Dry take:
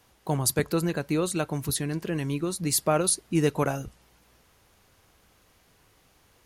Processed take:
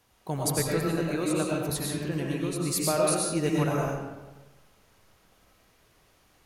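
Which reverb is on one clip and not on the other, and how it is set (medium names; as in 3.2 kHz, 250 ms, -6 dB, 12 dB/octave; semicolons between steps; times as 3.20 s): algorithmic reverb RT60 1.2 s, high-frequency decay 0.65×, pre-delay 65 ms, DRR -3 dB; trim -5 dB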